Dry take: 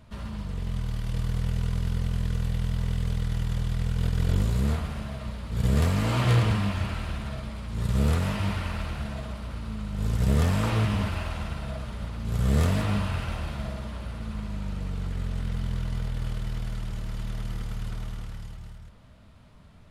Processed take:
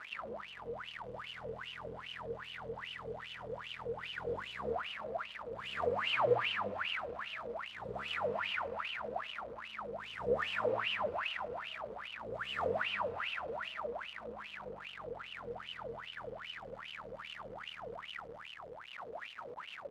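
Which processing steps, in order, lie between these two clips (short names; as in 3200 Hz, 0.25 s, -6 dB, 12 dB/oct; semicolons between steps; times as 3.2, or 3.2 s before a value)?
zero-crossing step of -32.5 dBFS; wah 2.5 Hz 460–3000 Hz, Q 17; gain +11.5 dB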